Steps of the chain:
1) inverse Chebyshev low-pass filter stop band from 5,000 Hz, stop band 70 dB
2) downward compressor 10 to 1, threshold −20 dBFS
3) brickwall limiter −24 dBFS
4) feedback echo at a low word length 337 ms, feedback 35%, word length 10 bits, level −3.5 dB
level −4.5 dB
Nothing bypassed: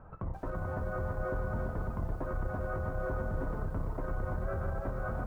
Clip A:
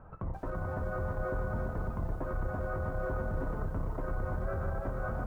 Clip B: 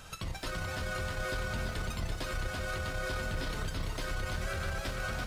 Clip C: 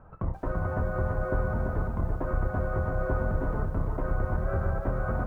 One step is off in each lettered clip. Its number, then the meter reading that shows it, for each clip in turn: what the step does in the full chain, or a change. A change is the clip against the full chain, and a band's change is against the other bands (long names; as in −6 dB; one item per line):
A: 2, average gain reduction 3.0 dB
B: 1, 2 kHz band +9.5 dB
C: 3, average gain reduction 5.0 dB